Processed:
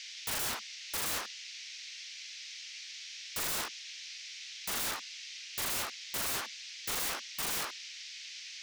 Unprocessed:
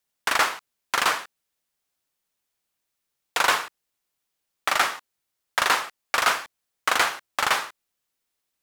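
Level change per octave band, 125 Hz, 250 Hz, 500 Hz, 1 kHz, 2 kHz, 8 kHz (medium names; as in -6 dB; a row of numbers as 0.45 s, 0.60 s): no reading, -6.0 dB, -13.0 dB, -18.0 dB, -15.5 dB, -3.5 dB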